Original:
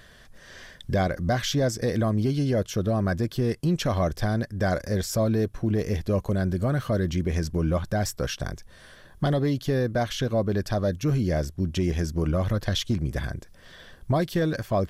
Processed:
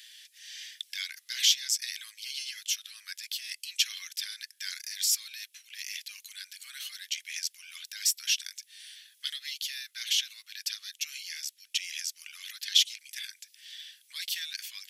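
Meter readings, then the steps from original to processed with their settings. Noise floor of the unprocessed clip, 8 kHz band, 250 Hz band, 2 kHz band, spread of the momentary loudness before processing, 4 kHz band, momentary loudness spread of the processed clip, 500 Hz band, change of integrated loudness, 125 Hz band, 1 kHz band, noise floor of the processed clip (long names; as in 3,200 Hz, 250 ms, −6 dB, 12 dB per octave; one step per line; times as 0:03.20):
−51 dBFS, +7.5 dB, below −40 dB, −4.0 dB, 5 LU, +7.5 dB, 18 LU, below −40 dB, −5.0 dB, below −40 dB, below −30 dB, −67 dBFS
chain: Butterworth high-pass 2,300 Hz 36 dB per octave
level +7.5 dB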